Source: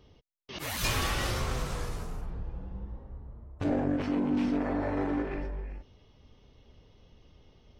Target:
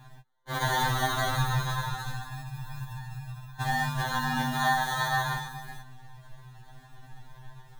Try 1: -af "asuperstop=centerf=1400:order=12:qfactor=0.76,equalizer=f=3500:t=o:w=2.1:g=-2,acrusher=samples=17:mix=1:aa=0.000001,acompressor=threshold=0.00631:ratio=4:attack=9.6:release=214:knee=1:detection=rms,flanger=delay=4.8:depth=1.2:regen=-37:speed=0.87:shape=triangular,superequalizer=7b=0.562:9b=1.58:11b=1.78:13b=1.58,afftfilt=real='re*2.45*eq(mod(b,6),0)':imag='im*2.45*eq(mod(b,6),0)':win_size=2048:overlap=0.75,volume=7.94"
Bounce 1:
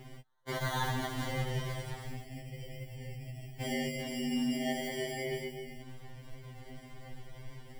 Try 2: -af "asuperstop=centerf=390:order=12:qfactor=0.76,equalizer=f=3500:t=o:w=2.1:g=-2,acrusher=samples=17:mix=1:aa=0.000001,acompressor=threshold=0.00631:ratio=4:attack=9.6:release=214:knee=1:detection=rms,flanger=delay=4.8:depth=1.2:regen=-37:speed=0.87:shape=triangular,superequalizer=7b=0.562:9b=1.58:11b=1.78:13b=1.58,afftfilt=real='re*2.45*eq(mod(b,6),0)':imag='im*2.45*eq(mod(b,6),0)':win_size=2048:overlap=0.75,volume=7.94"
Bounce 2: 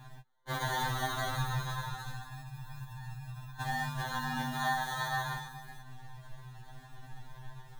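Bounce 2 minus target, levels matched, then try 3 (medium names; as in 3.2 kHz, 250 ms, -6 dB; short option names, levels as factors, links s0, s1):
compression: peak gain reduction +6.5 dB
-af "asuperstop=centerf=390:order=12:qfactor=0.76,equalizer=f=3500:t=o:w=2.1:g=-2,acrusher=samples=17:mix=1:aa=0.000001,acompressor=threshold=0.0168:ratio=4:attack=9.6:release=214:knee=1:detection=rms,flanger=delay=4.8:depth=1.2:regen=-37:speed=0.87:shape=triangular,superequalizer=7b=0.562:9b=1.58:11b=1.78:13b=1.58,afftfilt=real='re*2.45*eq(mod(b,6),0)':imag='im*2.45*eq(mod(b,6),0)':win_size=2048:overlap=0.75,volume=7.94"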